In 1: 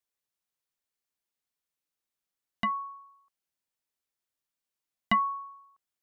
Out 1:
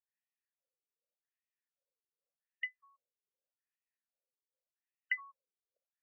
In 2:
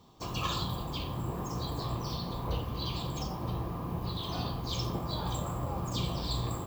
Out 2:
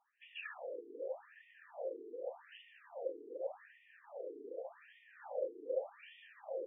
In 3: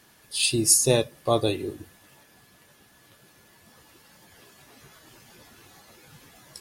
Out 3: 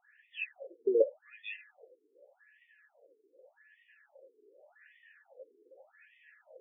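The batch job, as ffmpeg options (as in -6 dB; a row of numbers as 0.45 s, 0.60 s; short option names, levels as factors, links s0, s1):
-filter_complex "[0:a]asplit=3[s0][s1][s2];[s0]bandpass=f=530:t=q:w=8,volume=1[s3];[s1]bandpass=f=1840:t=q:w=8,volume=0.501[s4];[s2]bandpass=f=2480:t=q:w=8,volume=0.355[s5];[s3][s4][s5]amix=inputs=3:normalize=0,acrossover=split=340 2100:gain=0.0891 1 0.2[s6][s7][s8];[s6][s7][s8]amix=inputs=3:normalize=0,afftfilt=real='re*between(b*sr/1024,310*pow(2600/310,0.5+0.5*sin(2*PI*0.85*pts/sr))/1.41,310*pow(2600/310,0.5+0.5*sin(2*PI*0.85*pts/sr))*1.41)':imag='im*between(b*sr/1024,310*pow(2600/310,0.5+0.5*sin(2*PI*0.85*pts/sr))/1.41,310*pow(2600/310,0.5+0.5*sin(2*PI*0.85*pts/sr))*1.41)':win_size=1024:overlap=0.75,volume=4.73"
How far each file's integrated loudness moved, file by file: -9.5 LU, -10.0 LU, -12.0 LU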